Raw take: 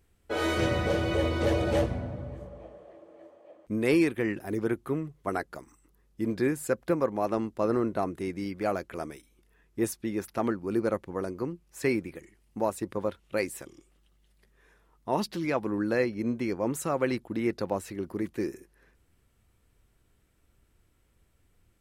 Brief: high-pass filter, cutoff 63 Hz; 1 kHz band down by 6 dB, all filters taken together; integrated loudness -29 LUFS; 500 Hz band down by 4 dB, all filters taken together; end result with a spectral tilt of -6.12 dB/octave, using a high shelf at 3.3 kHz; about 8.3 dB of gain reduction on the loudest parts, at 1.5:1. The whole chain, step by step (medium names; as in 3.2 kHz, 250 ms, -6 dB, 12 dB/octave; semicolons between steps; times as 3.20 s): high-pass 63 Hz; peaking EQ 500 Hz -3.5 dB; peaking EQ 1 kHz -6.5 dB; treble shelf 3.3 kHz -5 dB; compression 1.5:1, threshold -47 dBFS; trim +11 dB